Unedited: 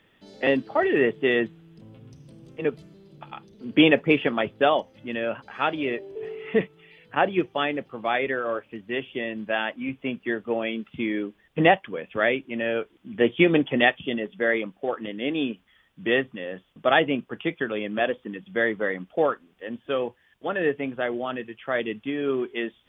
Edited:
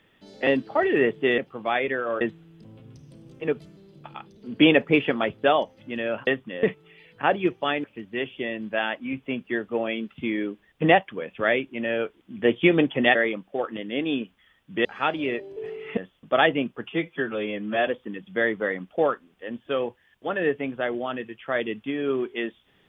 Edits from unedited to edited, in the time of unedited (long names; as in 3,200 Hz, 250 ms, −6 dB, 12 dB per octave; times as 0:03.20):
0:05.44–0:06.56: swap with 0:16.14–0:16.50
0:07.77–0:08.60: move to 0:01.38
0:13.91–0:14.44: remove
0:17.40–0:18.07: time-stretch 1.5×